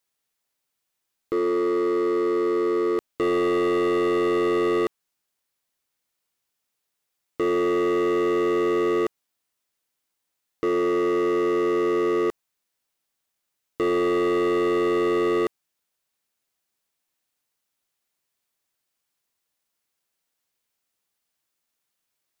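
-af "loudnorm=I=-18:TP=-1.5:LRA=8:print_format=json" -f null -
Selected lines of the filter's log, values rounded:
"input_i" : "-23.0",
"input_tp" : "-18.4",
"input_lra" : "3.9",
"input_thresh" : "-33.2",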